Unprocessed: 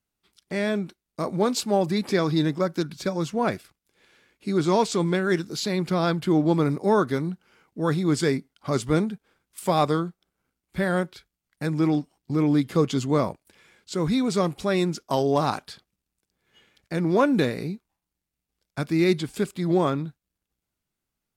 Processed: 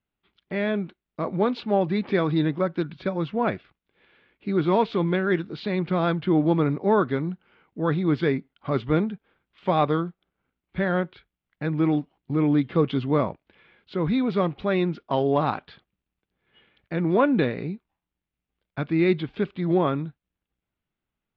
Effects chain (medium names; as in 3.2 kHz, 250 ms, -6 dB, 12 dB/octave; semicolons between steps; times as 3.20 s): steep low-pass 3.5 kHz 36 dB/octave